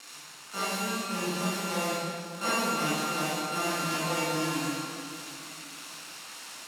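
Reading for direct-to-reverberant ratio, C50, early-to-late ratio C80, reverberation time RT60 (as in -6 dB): -10.5 dB, -4.5 dB, -2.0 dB, 2.4 s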